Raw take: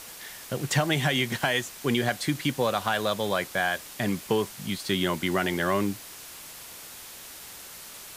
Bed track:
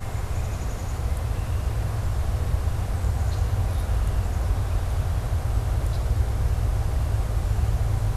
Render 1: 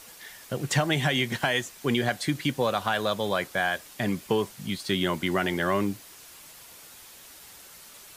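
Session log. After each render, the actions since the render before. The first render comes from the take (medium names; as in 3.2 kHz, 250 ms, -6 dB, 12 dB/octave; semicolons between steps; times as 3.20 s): noise reduction 6 dB, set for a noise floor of -44 dBFS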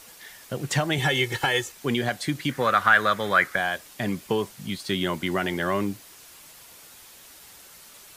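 0.98–1.72 s: comb 2.3 ms, depth 97%; 2.51–3.56 s: high-order bell 1.6 kHz +13 dB 1.1 oct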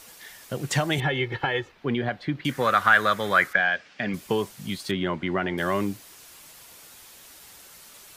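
1.00–2.45 s: distance through air 340 m; 3.53–4.14 s: cabinet simulation 110–4700 Hz, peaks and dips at 120 Hz -7 dB, 340 Hz -8 dB, 990 Hz -7 dB, 1.6 kHz +6 dB, 2.4 kHz +4 dB, 3.9 kHz -5 dB; 4.91–5.58 s: low-pass 2.5 kHz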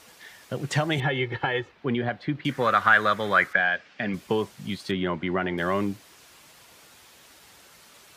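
high-pass 55 Hz; treble shelf 7.2 kHz -11.5 dB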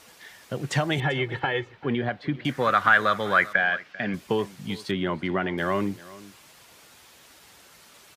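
delay 392 ms -19.5 dB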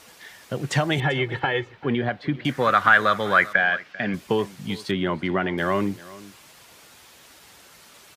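trim +2.5 dB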